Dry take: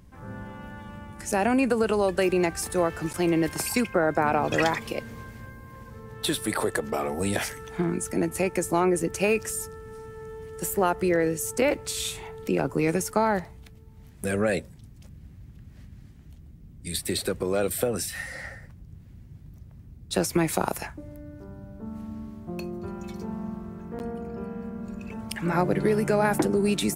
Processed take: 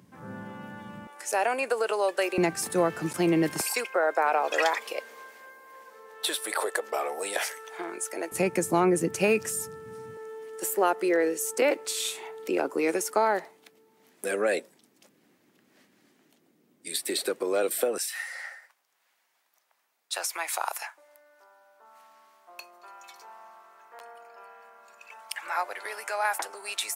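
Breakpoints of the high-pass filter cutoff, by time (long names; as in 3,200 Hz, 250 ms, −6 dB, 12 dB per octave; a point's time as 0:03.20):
high-pass filter 24 dB per octave
130 Hz
from 0:01.07 460 Hz
from 0:02.38 140 Hz
from 0:03.61 460 Hz
from 0:08.32 120 Hz
from 0:10.17 310 Hz
from 0:17.98 770 Hz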